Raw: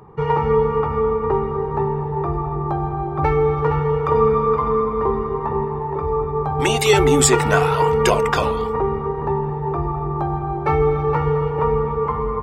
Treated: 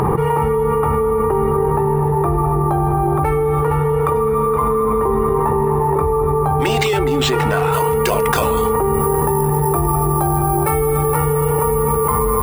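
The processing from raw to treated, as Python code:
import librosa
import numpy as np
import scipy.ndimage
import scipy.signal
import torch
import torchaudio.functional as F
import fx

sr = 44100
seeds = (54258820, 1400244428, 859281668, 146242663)

y = np.repeat(x[::4], 4)[:len(x)]
y = fx.high_shelf(y, sr, hz=6100.0, db=fx.steps((0.0, -9.5), (7.72, 3.0), (8.93, 10.0)))
y = fx.env_flatten(y, sr, amount_pct=100)
y = y * 10.0 ** (-5.5 / 20.0)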